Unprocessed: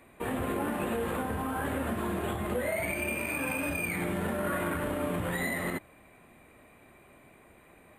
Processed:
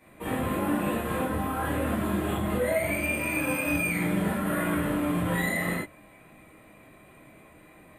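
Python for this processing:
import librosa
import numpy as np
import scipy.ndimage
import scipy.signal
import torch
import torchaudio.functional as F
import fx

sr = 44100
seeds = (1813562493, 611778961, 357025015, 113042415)

y = fx.rev_gated(x, sr, seeds[0], gate_ms=90, shape='flat', drr_db=-7.5)
y = y * 10.0 ** (-5.0 / 20.0)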